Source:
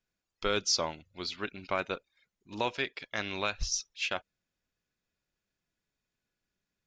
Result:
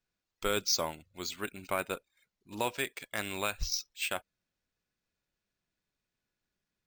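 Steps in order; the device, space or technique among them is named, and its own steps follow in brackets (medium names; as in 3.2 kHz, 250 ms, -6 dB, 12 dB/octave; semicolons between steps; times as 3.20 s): crushed at another speed (playback speed 0.5×; sample-and-hold 8×; playback speed 2×); trim -1 dB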